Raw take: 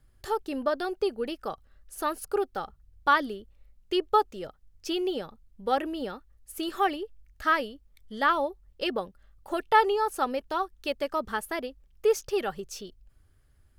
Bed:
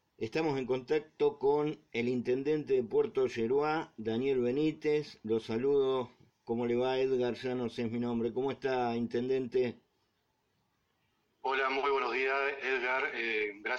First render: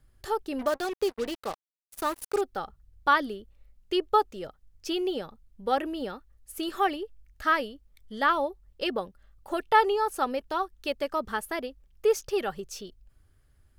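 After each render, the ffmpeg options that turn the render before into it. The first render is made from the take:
ffmpeg -i in.wav -filter_complex "[0:a]asettb=1/sr,asplit=3[link_01][link_02][link_03];[link_01]atrim=end=0.594[link_04];[link_02]atrim=start=0.59:end=2.41,asetpts=PTS-STARTPTS,afade=type=in:duration=0.004:curve=qsin,afade=type=out:start_time=1.816:duration=0.004:curve=qsin,acrusher=bits=5:mix=0:aa=0.5[link_05];[link_03]atrim=start=2.406[link_06];[link_04][link_05]acrossfade=duration=0.004:curve1=hsin:curve2=qsin[link_07];[link_07][link_06]acrossfade=duration=0.004:curve1=qsin:curve2=hsin" out.wav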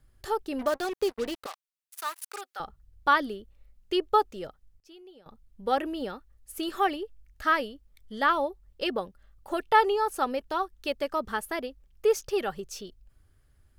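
ffmpeg -i in.wav -filter_complex "[0:a]asettb=1/sr,asplit=3[link_01][link_02][link_03];[link_01]atrim=end=1.464[link_04];[link_02]atrim=start=1.46:end=2.6,asetpts=PTS-STARTPTS,afade=type=in:duration=0.004:curve=qsin,afade=type=out:start_time=1.136:duration=0.004:curve=qsin,highpass=1200[link_05];[link_03]atrim=start=2.596[link_06];[link_04][link_05]acrossfade=duration=0.004:curve1=hsin:curve2=qsin[link_07];[link_07][link_06]acrossfade=duration=0.004:curve1=qsin:curve2=hsin,asplit=3[link_08][link_09][link_10];[link_08]atrim=end=4.8,asetpts=PTS-STARTPTS,afade=type=out:start_time=4.42:duration=0.38:curve=log:silence=0.0841395[link_11];[link_09]atrim=start=4.8:end=5.26,asetpts=PTS-STARTPTS,volume=-21.5dB[link_12];[link_10]atrim=start=5.26,asetpts=PTS-STARTPTS,afade=type=in:duration=0.38:curve=log:silence=0.0841395[link_13];[link_11][link_12][link_13]concat=n=3:v=0:a=1" out.wav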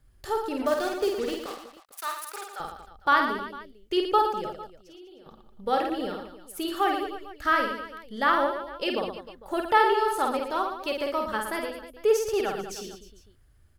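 ffmpeg -i in.wav -af "aecho=1:1:50|115|199.5|309.4|452.2:0.631|0.398|0.251|0.158|0.1" out.wav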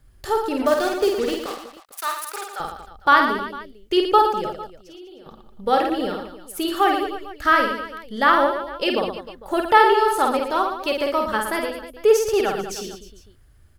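ffmpeg -i in.wav -af "volume=6.5dB" out.wav

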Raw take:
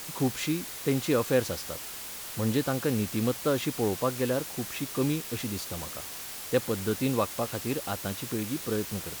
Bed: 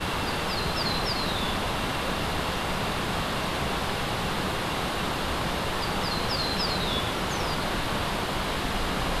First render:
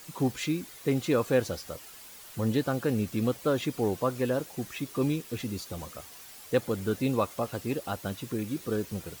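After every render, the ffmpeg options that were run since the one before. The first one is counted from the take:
ffmpeg -i in.wav -af "afftdn=noise_reduction=10:noise_floor=-40" out.wav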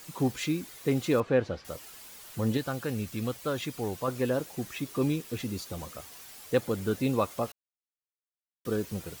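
ffmpeg -i in.wav -filter_complex "[0:a]asettb=1/sr,asplit=3[link_01][link_02][link_03];[link_01]atrim=end=1.204[link_04];[link_02]atrim=start=1.2:end=1.65,asetpts=PTS-STARTPTS,afade=type=in:duration=0.004:curve=qsin,afade=type=out:start_time=0.446:duration=0.004:curve=qsin,lowpass=2800[link_05];[link_03]atrim=start=1.646[link_06];[link_04][link_05]acrossfade=duration=0.004:curve1=hsin:curve2=qsin[link_07];[link_07][link_06]acrossfade=duration=0.004:curve1=qsin:curve2=hsin,asettb=1/sr,asplit=3[link_08][link_09][link_10];[link_08]atrim=end=2.574[link_11];[link_09]atrim=start=2.57:end=4.08,asetpts=PTS-STARTPTS,afade=type=in:duration=0.004:curve=qsin,afade=type=out:start_time=1.506:duration=0.004:curve=qsin,equalizer=frequency=330:width=0.44:gain=-6[link_12];[link_10]atrim=start=4.076[link_13];[link_11][link_12]acrossfade=duration=0.004:curve1=hsin:curve2=qsin[link_14];[link_14][link_13]acrossfade=duration=0.004:curve1=qsin:curve2=hsin,asplit=3[link_15][link_16][link_17];[link_15]atrim=end=7.52,asetpts=PTS-STARTPTS,afade=type=out:start_time=7.516:duration=0.004:curve=hsin[link_18];[link_16]atrim=start=7.52:end=8.65,asetpts=PTS-STARTPTS,volume=0[link_19];[link_17]atrim=start=8.65,asetpts=PTS-STARTPTS,afade=type=in:duration=0.004:curve=hsin[link_20];[link_18][link_19][link_20]concat=n=3:v=0:a=1" out.wav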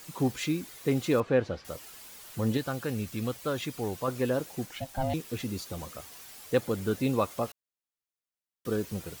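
ffmpeg -i in.wav -filter_complex "[0:a]asettb=1/sr,asplit=3[link_01][link_02][link_03];[link_01]atrim=end=4.664[link_04];[link_02]atrim=start=4.66:end=5.14,asetpts=PTS-STARTPTS,afade=type=in:duration=0.004:curve=qsin,afade=type=out:start_time=0.476:duration=0.004:curve=qsin,aeval=exprs='val(0)*sin(2*PI*400*n/s)':channel_layout=same[link_05];[link_03]atrim=start=5.136[link_06];[link_04][link_05]acrossfade=duration=0.004:curve1=hsin:curve2=qsin[link_07];[link_07][link_06]acrossfade=duration=0.004:curve1=qsin:curve2=hsin" out.wav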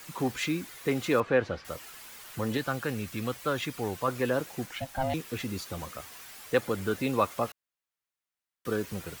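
ffmpeg -i in.wav -filter_complex "[0:a]acrossover=split=260|1100|2400[link_01][link_02][link_03][link_04];[link_01]alimiter=level_in=6.5dB:limit=-24dB:level=0:latency=1,volume=-6.5dB[link_05];[link_03]acontrast=89[link_06];[link_05][link_02][link_06][link_04]amix=inputs=4:normalize=0" out.wav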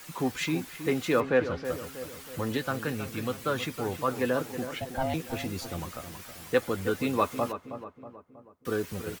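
ffmpeg -i in.wav -filter_complex "[0:a]asplit=2[link_01][link_02];[link_02]adelay=12,volume=-11.5dB[link_03];[link_01][link_03]amix=inputs=2:normalize=0,asplit=2[link_04][link_05];[link_05]adelay=320,lowpass=frequency=1700:poles=1,volume=-10dB,asplit=2[link_06][link_07];[link_07]adelay=320,lowpass=frequency=1700:poles=1,volume=0.51,asplit=2[link_08][link_09];[link_09]adelay=320,lowpass=frequency=1700:poles=1,volume=0.51,asplit=2[link_10][link_11];[link_11]adelay=320,lowpass=frequency=1700:poles=1,volume=0.51,asplit=2[link_12][link_13];[link_13]adelay=320,lowpass=frequency=1700:poles=1,volume=0.51,asplit=2[link_14][link_15];[link_15]adelay=320,lowpass=frequency=1700:poles=1,volume=0.51[link_16];[link_04][link_06][link_08][link_10][link_12][link_14][link_16]amix=inputs=7:normalize=0" out.wav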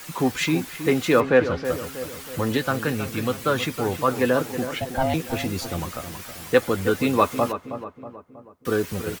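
ffmpeg -i in.wav -af "volume=7dB" out.wav

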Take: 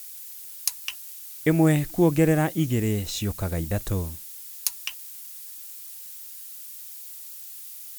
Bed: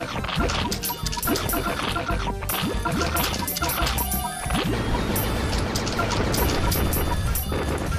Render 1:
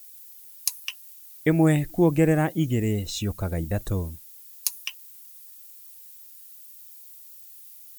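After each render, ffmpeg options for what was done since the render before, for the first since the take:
ffmpeg -i in.wav -af "afftdn=noise_reduction=10:noise_floor=-41" out.wav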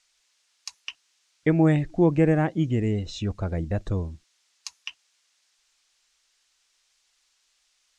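ffmpeg -i in.wav -af "lowpass=frequency=6700:width=0.5412,lowpass=frequency=6700:width=1.3066,highshelf=frequency=3900:gain=-9" out.wav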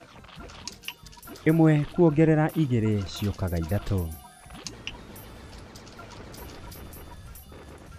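ffmpeg -i in.wav -i bed.wav -filter_complex "[1:a]volume=-20dB[link_01];[0:a][link_01]amix=inputs=2:normalize=0" out.wav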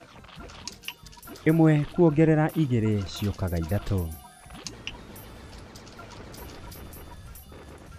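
ffmpeg -i in.wav -af anull out.wav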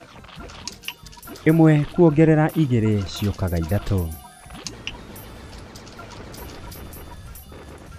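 ffmpeg -i in.wav -af "volume=5dB" out.wav

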